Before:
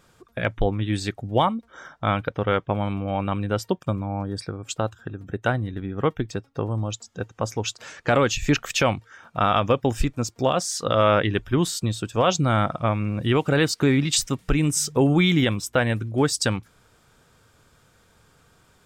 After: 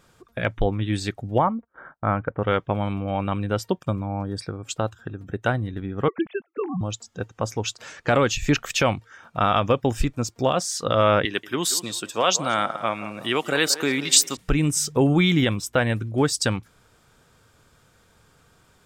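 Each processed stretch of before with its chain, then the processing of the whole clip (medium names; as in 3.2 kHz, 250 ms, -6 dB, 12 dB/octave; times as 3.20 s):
1.38–2.43 s: gate -46 dBFS, range -23 dB + low-pass 1.8 kHz 24 dB/octave
6.08–6.81 s: formants replaced by sine waves + gate -51 dBFS, range -9 dB + peaking EQ 630 Hz -3 dB 0.44 oct
11.25–14.37 s: high-pass 190 Hz + tilt EQ +2.5 dB/octave + band-passed feedback delay 181 ms, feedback 44%, band-pass 730 Hz, level -11.5 dB
whole clip: none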